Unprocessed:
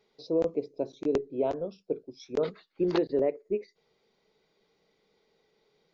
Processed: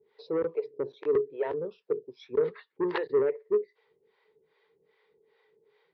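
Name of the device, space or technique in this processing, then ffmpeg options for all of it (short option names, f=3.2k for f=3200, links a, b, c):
guitar amplifier with harmonic tremolo: -filter_complex "[0:a]acrossover=split=510[a][b];[a]aeval=exprs='val(0)*(1-1/2+1/2*cos(2*PI*2.5*n/s))':c=same[c];[b]aeval=exprs='val(0)*(1-1/2-1/2*cos(2*PI*2.5*n/s))':c=same[d];[c][d]amix=inputs=2:normalize=0,asoftclip=type=tanh:threshold=-27.5dB,highpass=92,equalizer=f=200:t=q:w=4:g=-8,equalizer=f=280:t=q:w=4:g=-7,equalizer=f=430:t=q:w=4:g=10,equalizer=f=670:t=q:w=4:g=-8,equalizer=f=960:t=q:w=4:g=7,equalizer=f=1.8k:t=q:w=4:g=9,lowpass=f=3.6k:w=0.5412,lowpass=f=3.6k:w=1.3066,volume=3.5dB"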